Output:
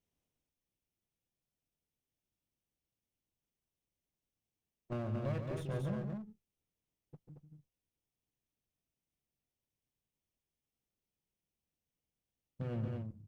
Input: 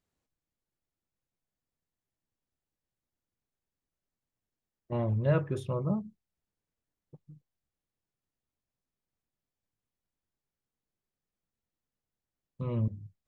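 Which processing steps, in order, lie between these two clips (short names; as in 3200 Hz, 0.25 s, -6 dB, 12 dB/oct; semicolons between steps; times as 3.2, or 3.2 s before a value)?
minimum comb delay 0.33 ms; compressor, threshold -33 dBFS, peak gain reduction 11.5 dB; on a send: loudspeakers at several distances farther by 49 m -8 dB, 78 m -4 dB; on the sum: gain -2.5 dB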